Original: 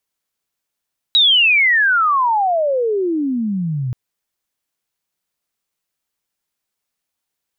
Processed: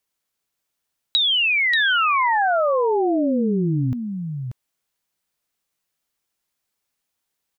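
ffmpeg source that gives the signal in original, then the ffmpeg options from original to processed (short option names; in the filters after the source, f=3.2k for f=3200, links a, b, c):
-f lavfi -i "aevalsrc='pow(10,(-8.5-10*t/2.78)/20)*sin(2*PI*3900*2.78/log(120/3900)*(exp(log(120/3900)*t/2.78)-1))':d=2.78:s=44100"
-filter_complex "[0:a]acompressor=threshold=-18dB:ratio=6,asplit=2[a][b];[b]aecho=0:1:585:0.473[c];[a][c]amix=inputs=2:normalize=0"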